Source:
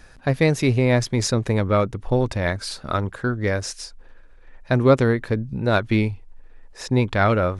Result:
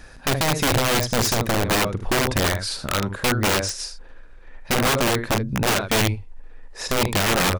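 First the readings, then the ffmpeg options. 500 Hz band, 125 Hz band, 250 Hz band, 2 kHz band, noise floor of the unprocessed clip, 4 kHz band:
-3.0 dB, -4.0 dB, -3.0 dB, +3.5 dB, -47 dBFS, +9.5 dB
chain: -af "alimiter=limit=0.224:level=0:latency=1:release=330,aecho=1:1:45|76:0.237|0.316,aeval=exprs='(mod(7.94*val(0)+1,2)-1)/7.94':c=same,volume=1.58"

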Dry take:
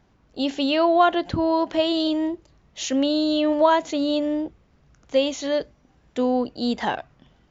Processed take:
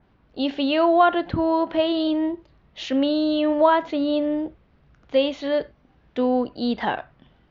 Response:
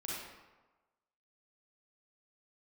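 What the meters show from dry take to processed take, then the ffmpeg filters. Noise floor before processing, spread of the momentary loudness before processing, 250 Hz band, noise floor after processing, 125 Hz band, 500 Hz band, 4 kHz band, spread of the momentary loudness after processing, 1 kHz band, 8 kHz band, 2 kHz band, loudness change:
-61 dBFS, 12 LU, +0.5 dB, -60 dBFS, +0.5 dB, +0.5 dB, -2.5 dB, 13 LU, +0.5 dB, no reading, +0.5 dB, +0.5 dB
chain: -filter_complex "[0:a]lowpass=f=4200:w=0.5412,lowpass=f=4200:w=1.3066,asplit=2[s0][s1];[s1]equalizer=f=1500:w=1.3:g=11[s2];[1:a]atrim=start_sample=2205,afade=t=out:st=0.22:d=0.01,atrim=end_sample=10143,asetrate=74970,aresample=44100[s3];[s2][s3]afir=irnorm=-1:irlink=0,volume=0.158[s4];[s0][s4]amix=inputs=2:normalize=0,adynamicequalizer=threshold=0.0112:dfrequency=3000:dqfactor=0.7:tfrequency=3000:tqfactor=0.7:attack=5:release=100:ratio=0.375:range=3:mode=cutabove:tftype=highshelf"

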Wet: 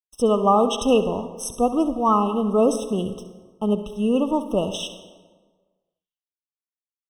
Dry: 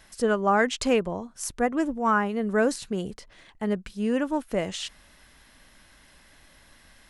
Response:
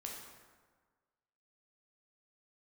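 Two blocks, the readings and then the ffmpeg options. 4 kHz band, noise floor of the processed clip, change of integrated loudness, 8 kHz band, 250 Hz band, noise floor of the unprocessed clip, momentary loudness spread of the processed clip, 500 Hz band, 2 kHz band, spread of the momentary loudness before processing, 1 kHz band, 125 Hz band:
+3.5 dB, under -85 dBFS, +4.5 dB, +2.0 dB, +5.0 dB, -56 dBFS, 11 LU, +5.5 dB, -12.5 dB, 11 LU, +5.0 dB, +5.0 dB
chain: -filter_complex "[0:a]agate=range=0.0224:threshold=0.00794:ratio=3:detection=peak,aeval=exprs='sgn(val(0))*max(abs(val(0))-0.002,0)':c=same,asplit=2[s0][s1];[1:a]atrim=start_sample=2205,adelay=67[s2];[s1][s2]afir=irnorm=-1:irlink=0,volume=0.398[s3];[s0][s3]amix=inputs=2:normalize=0,afftfilt=real='re*eq(mod(floor(b*sr/1024/1300),2),0)':imag='im*eq(mod(floor(b*sr/1024/1300),2),0)':win_size=1024:overlap=0.75,volume=1.78"

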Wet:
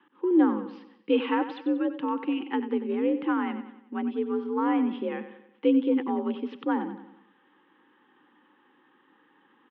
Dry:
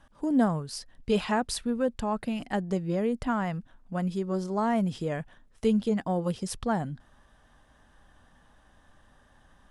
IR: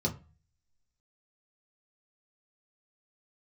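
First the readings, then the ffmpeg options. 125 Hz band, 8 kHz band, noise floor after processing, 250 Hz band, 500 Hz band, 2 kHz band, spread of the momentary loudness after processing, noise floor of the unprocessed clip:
under -15 dB, under -35 dB, -64 dBFS, +3.0 dB, +1.0 dB, +0.5 dB, 14 LU, -61 dBFS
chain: -filter_complex "[0:a]aemphasis=mode=reproduction:type=bsi,aexciter=amount=2.5:drive=1:freq=2400,asplit=2[s0][s1];[s1]aecho=0:1:93|186|279|372|465:0.251|0.121|0.0579|0.0278|0.0133[s2];[s0][s2]amix=inputs=2:normalize=0,highpass=f=210:t=q:w=0.5412,highpass=f=210:t=q:w=1.307,lowpass=f=3100:t=q:w=0.5176,lowpass=f=3100:t=q:w=0.7071,lowpass=f=3100:t=q:w=1.932,afreqshift=57,asuperstop=centerf=650:order=8:qfactor=3.1"

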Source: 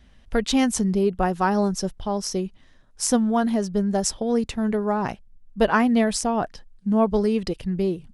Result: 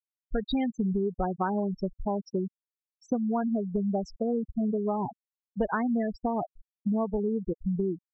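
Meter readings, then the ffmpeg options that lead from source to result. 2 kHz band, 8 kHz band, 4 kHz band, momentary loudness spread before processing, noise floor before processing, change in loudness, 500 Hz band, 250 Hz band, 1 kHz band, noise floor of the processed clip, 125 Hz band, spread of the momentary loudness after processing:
-11.5 dB, under -30 dB, under -15 dB, 8 LU, -52 dBFS, -7.0 dB, -7.0 dB, -6.5 dB, -7.5 dB, under -85 dBFS, -5.5 dB, 6 LU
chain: -af "afftfilt=real='re*gte(hypot(re,im),0.178)':imag='im*gte(hypot(re,im),0.178)':win_size=1024:overlap=0.75,lowpass=f=3800:w=0.5412,lowpass=f=3800:w=1.3066,acompressor=threshold=0.0562:ratio=6"

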